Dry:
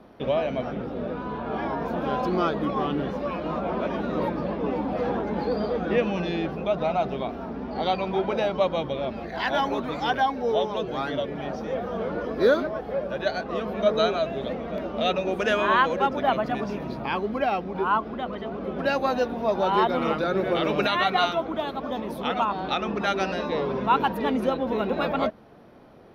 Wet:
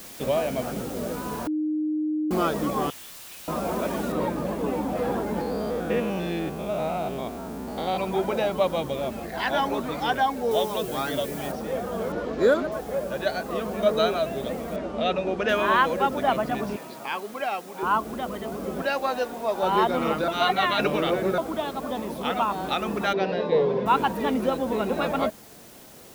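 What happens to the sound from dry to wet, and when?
1.47–2.31 s: bleep 307 Hz -23 dBFS
2.90–3.48 s: inverse Chebyshev high-pass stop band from 920 Hz, stop band 60 dB
4.12 s: noise floor step -43 dB -50 dB
5.41–7.98 s: spectrogram pixelated in time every 100 ms
10.51–11.52 s: treble shelf 4.8 kHz +10 dB
12.12–12.72 s: decimation joined by straight lines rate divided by 4×
14.76–15.49 s: distance through air 110 m
16.76–17.83 s: high-pass 860 Hz 6 dB/octave
18.82–19.63 s: peaking EQ 100 Hz -15 dB 2.5 oct
20.28–21.38 s: reverse
23.13–23.86 s: cabinet simulation 130–4400 Hz, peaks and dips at 160 Hz +7 dB, 260 Hz -6 dB, 460 Hz +10 dB, 1.3 kHz -8 dB, 2.7 kHz -4 dB

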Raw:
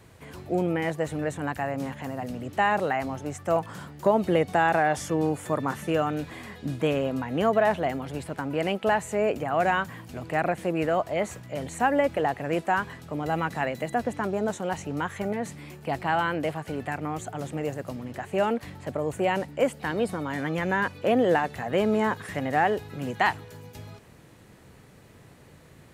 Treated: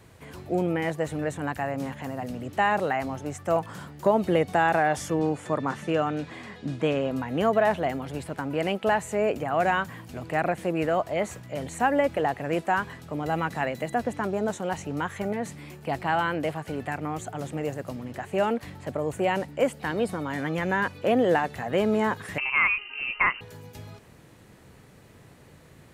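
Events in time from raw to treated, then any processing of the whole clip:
5.19–7.11 s: band-pass 100–7000 Hz
22.38–23.41 s: frequency inversion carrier 2.9 kHz

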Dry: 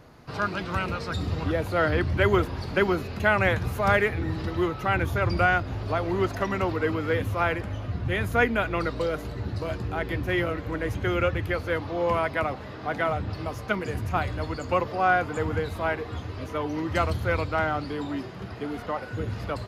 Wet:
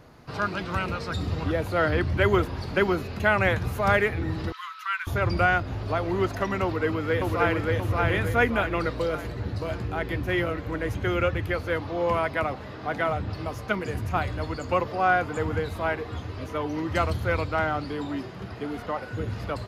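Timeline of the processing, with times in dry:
4.52–5.07 s: rippled Chebyshev high-pass 1 kHz, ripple 3 dB
6.63–7.73 s: echo throw 580 ms, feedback 45%, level -1.5 dB

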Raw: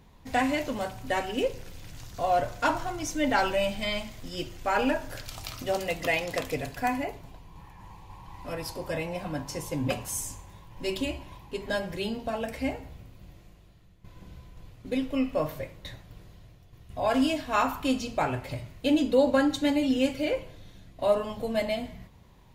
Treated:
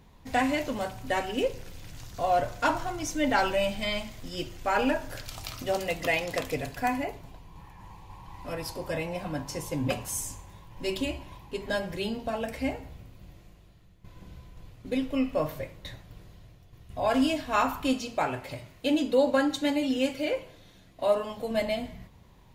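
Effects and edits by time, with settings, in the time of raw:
17.93–21.51 s: bass shelf 150 Hz -10.5 dB

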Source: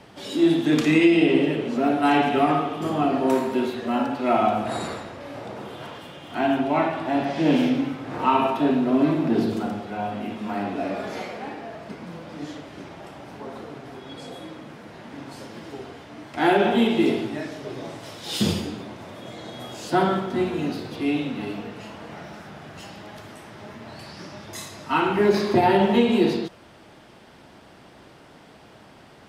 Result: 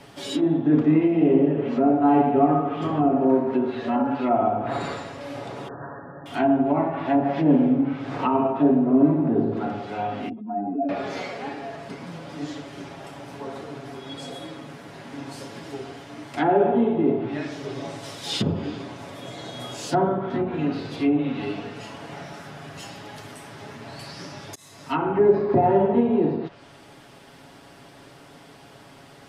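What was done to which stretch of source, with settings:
5.68–6.26 s: brick-wall FIR low-pass 1.9 kHz
10.29–10.89 s: spectral contrast enhancement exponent 2.4
24.55–25.03 s: fade in
whole clip: low-pass that closes with the level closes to 880 Hz, closed at -18.5 dBFS; treble shelf 7.2 kHz +8.5 dB; comb 7.2 ms, depth 50%

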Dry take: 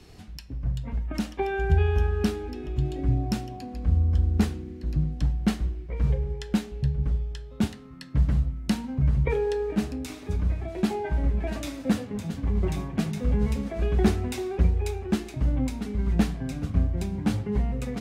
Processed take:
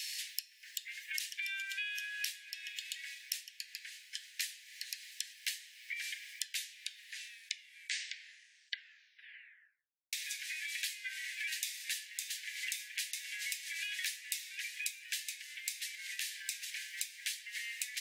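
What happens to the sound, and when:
1.62–4.49 s: tape noise reduction on one side only decoder only
6.42 s: tape stop 3.71 s
15.25–16.73 s: compression 3:1, threshold -27 dBFS
whole clip: steep high-pass 1.7 kHz 96 dB/octave; tilt EQ +3 dB/octave; compression 6:1, threshold -50 dBFS; trim +12.5 dB

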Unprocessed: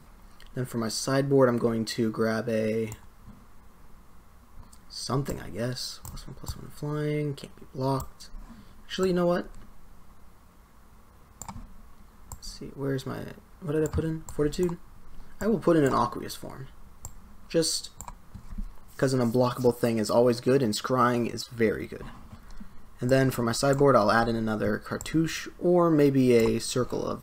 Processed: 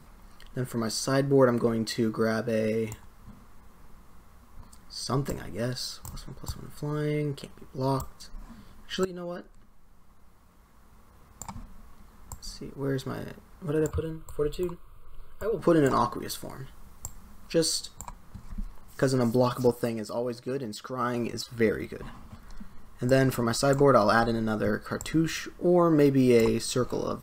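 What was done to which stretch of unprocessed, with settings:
9.05–11.46 s: fade in, from -15 dB
13.91–15.59 s: static phaser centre 1.2 kHz, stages 8
16.21–17.54 s: treble shelf 4.6 kHz +5 dB
19.63–21.39 s: dip -9.5 dB, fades 0.44 s

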